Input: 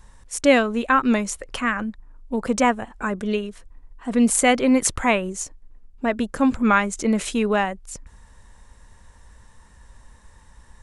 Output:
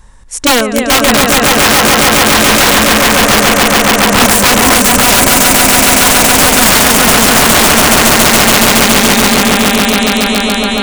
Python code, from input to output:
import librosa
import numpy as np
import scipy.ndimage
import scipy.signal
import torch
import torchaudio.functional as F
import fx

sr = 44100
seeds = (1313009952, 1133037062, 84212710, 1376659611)

y = fx.spec_paint(x, sr, seeds[0], shape='rise', start_s=8.27, length_s=1.15, low_hz=2100.0, high_hz=4300.0, level_db=-31.0)
y = fx.echo_swell(y, sr, ms=140, loudest=8, wet_db=-3.5)
y = (np.mod(10.0 ** (10.0 / 20.0) * y + 1.0, 2.0) - 1.0) / 10.0 ** (10.0 / 20.0)
y = y * librosa.db_to_amplitude(8.5)